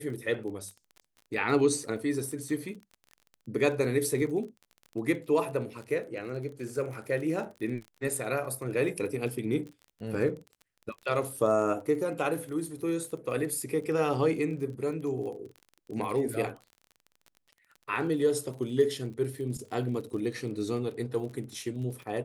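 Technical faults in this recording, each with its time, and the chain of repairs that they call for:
crackle 33/s -39 dBFS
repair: de-click

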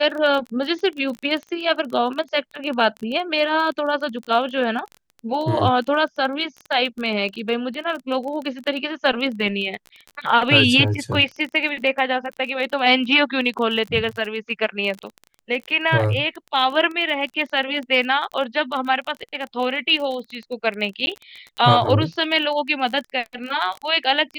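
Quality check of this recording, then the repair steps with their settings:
crackle 23/s -27 dBFS
21.06–21.07 gap 11 ms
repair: de-click; interpolate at 21.06, 11 ms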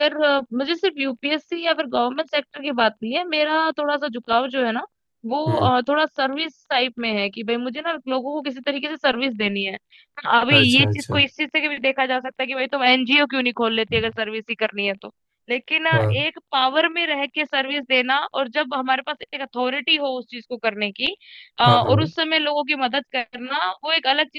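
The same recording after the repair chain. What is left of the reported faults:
none

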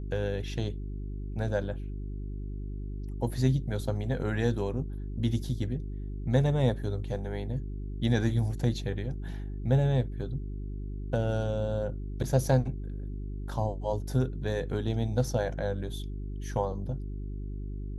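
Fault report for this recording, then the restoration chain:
hum 50 Hz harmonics 8 -36 dBFS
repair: de-hum 50 Hz, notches 8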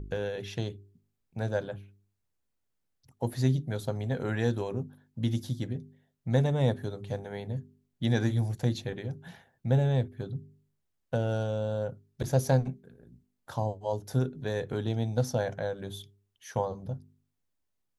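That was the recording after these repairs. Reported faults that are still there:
none

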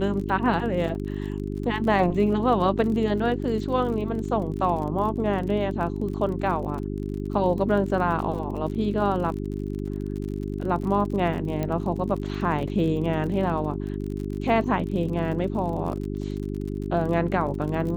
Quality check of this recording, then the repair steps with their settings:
crackle 41/s -33 dBFS
hum 50 Hz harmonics 8 -30 dBFS
11.63 pop -15 dBFS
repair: de-click; de-hum 50 Hz, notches 8

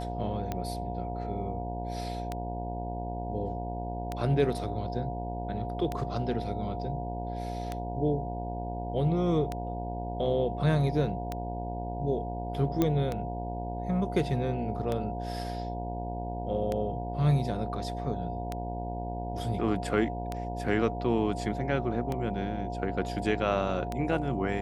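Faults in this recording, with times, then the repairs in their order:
buzz 60 Hz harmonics 16 -36 dBFS
tick 33 1/3 rpm -18 dBFS
tone 710 Hz -37 dBFS
12.82 pop -13 dBFS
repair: de-click; notch 710 Hz, Q 30; de-hum 60 Hz, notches 16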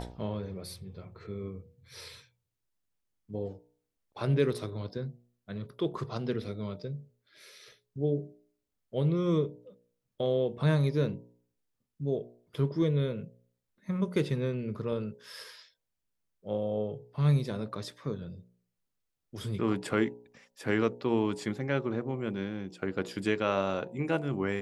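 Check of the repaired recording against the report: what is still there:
none

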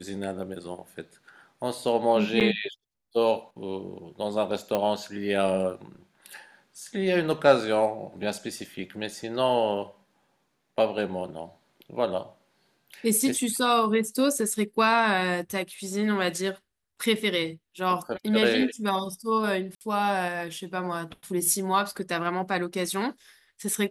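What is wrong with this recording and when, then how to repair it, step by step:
2.4–2.41 gap 8.3 ms
4.75 pop -13 dBFS
19.75–19.81 gap 59 ms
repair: de-click; interpolate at 2.4, 8.3 ms; interpolate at 19.75, 59 ms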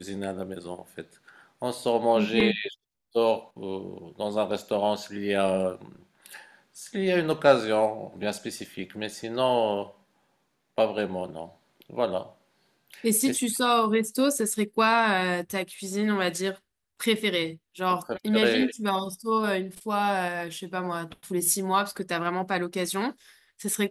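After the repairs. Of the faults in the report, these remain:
none

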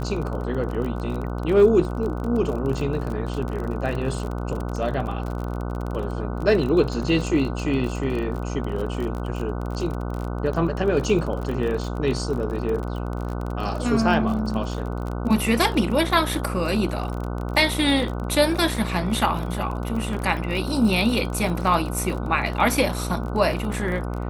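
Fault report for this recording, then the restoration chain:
buzz 60 Hz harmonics 25 -28 dBFS
crackle 35/s -28 dBFS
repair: de-click; de-hum 60 Hz, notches 25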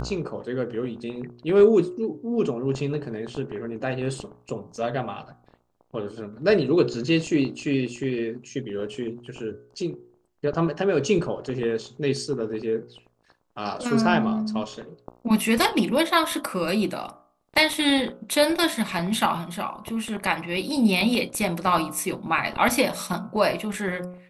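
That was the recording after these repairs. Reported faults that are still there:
none

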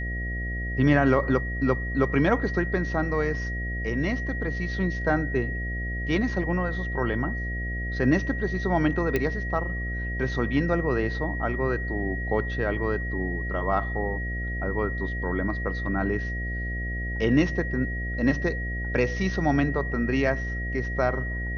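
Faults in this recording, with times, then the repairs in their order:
buzz 60 Hz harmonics 12 -31 dBFS
tone 1900 Hz -33 dBFS
9.16 pop -12 dBFS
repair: de-click; notch 1900 Hz, Q 30; de-hum 60 Hz, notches 12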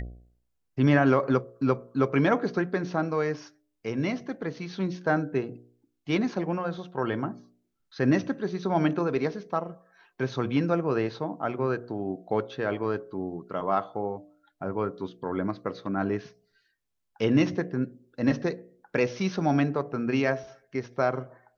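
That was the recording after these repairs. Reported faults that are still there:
none

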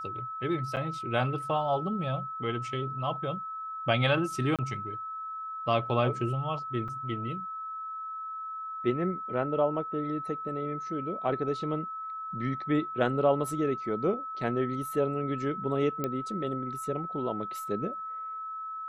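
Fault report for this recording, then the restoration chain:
tone 1300 Hz -35 dBFS
0.76–0.77 gap 8.1 ms
4.56–4.59 gap 27 ms
6.88 gap 5 ms
16.04 pop -17 dBFS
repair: de-click; notch 1300 Hz, Q 30; interpolate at 0.76, 8.1 ms; interpolate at 4.56, 27 ms; interpolate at 6.88, 5 ms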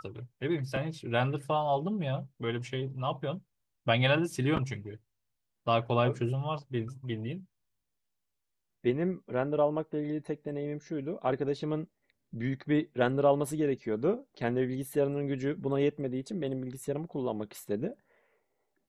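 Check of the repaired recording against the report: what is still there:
none

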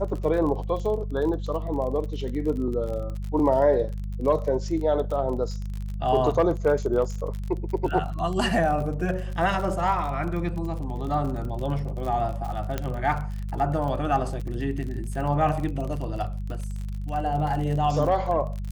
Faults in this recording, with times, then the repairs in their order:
crackle 36/s -31 dBFS
hum 50 Hz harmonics 4 -31 dBFS
12.78 pop -13 dBFS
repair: de-click; de-hum 50 Hz, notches 4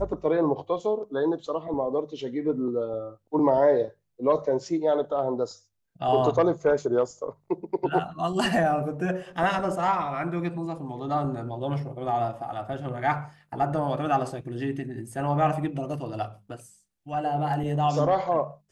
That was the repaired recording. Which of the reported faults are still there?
none

